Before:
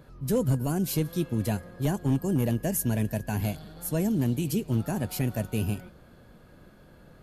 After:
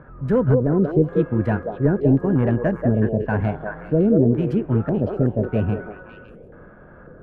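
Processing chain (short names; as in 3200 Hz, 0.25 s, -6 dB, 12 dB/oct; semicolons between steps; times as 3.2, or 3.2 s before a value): Wiener smoothing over 9 samples; LFO low-pass square 0.92 Hz 460–1500 Hz; delay with a stepping band-pass 0.186 s, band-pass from 520 Hz, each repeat 1.4 oct, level -0.5 dB; gain +6.5 dB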